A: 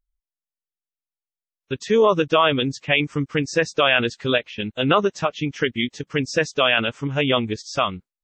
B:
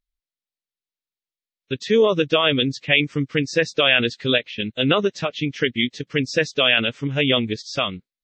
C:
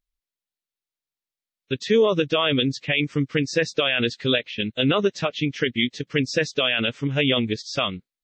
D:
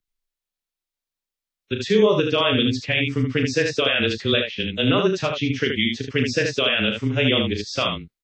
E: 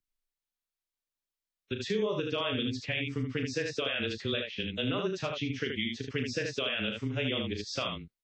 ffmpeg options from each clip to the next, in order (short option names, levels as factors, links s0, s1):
-af "equalizer=f=125:t=o:w=1:g=6,equalizer=f=250:t=o:w=1:g=6,equalizer=f=500:t=o:w=1:g=6,equalizer=f=1000:t=o:w=1:g=-4,equalizer=f=2000:t=o:w=1:g=7,equalizer=f=4000:t=o:w=1:g=11,volume=0.473"
-af "alimiter=limit=0.316:level=0:latency=1:release=37"
-af "aecho=1:1:36|76:0.447|0.562,afreqshift=-16"
-af "acompressor=threshold=0.0398:ratio=2,volume=0.531"